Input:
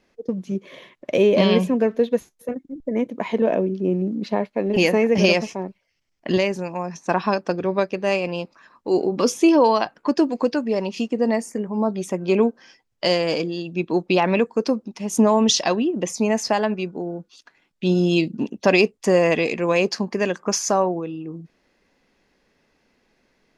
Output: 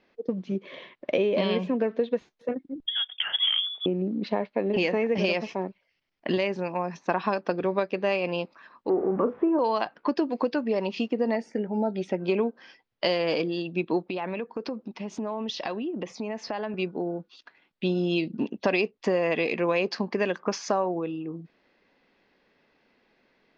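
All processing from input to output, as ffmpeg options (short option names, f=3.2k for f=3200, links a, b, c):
-filter_complex "[0:a]asettb=1/sr,asplit=3[a][b][c];[a]atrim=end=2.864[d];[b]atrim=start=2.86:end=3.86,asetpts=PTS-STARTPTS,afade=t=in:d=0.004:c=qsin,afade=t=out:st=0.996:d=0.004:c=qsin,highpass=f=440:w=0.5412,highpass=f=440:w=1.3066,asoftclip=type=hard:threshold=-15dB,lowpass=f=3.2k:t=q:w=0.5098,lowpass=f=3.2k:t=q:w=0.6013,lowpass=f=3.2k:t=q:w=0.9,lowpass=f=3.2k:t=q:w=2.563,afreqshift=-3800[e];[c]atrim=start=3.856[f];[d][e]acrossfade=d=0.004:c1=hsin:c2=qsin[g];[g][f]acrossfade=d=0.004:c1=qsin:c2=hsin,asettb=1/sr,asplit=3[h][i][j];[h]atrim=end=8.894[k];[i]atrim=start=8.89:end=9.59,asetpts=PTS-STARTPTS,afade=t=in:d=0.004:c=qsin,afade=t=out:st=0.696:d=0.004:c=qsin,aeval=exprs='val(0)+0.5*0.0299*sgn(val(0))':c=same,lowpass=f=1.4k:w=0.5412,lowpass=f=1.4k:w=1.3066,asplit=2[l][m];[m]adelay=37,volume=-9dB[n];[l][n]amix=inputs=2:normalize=0,atrim=end_sample=30870[o];[j]atrim=start=9.586[p];[k][o]acrossfade=d=0.004:c1=hsin:c2=qsin[q];[q][p]acrossfade=d=0.004:c1=qsin:c2=hsin,asettb=1/sr,asplit=3[r][s][t];[r]atrim=end=11.354[u];[s]atrim=start=11.35:end=12.2,asetpts=PTS-STARTPTS,afade=t=in:d=0.004:c=qsin,afade=t=out:st=0.846:d=0.004:c=qsin,asuperstop=centerf=1100:order=8:qfactor=3.6,equalizer=f=7.2k:t=o:w=0.36:g=-6.5[v];[t]atrim=start=12.196[w];[u][v]acrossfade=d=0.004:c1=hsin:c2=qsin[x];[x][w]acrossfade=d=0.004:c1=qsin:c2=hsin,asettb=1/sr,asplit=3[y][z][aa];[y]atrim=end=14.044[ab];[z]atrim=start=14.04:end=16.74,asetpts=PTS-STARTPTS,afade=t=in:d=0.004:c=qsin,afade=t=out:st=2.696:d=0.004:c=qsin,highshelf=f=6.4k:g=-8.5,acompressor=threshold=-27dB:ratio=6:attack=3.2:release=140:knee=1:detection=peak[ac];[aa]atrim=start=16.736[ad];[ab][ac]acrossfade=d=0.004:c1=hsin:c2=qsin[ae];[ae][ad]acrossfade=d=0.004:c1=qsin:c2=hsin,acompressor=threshold=-20dB:ratio=6,lowpass=f=4.4k:w=0.5412,lowpass=f=4.4k:w=1.3066,lowshelf=f=120:g=-12"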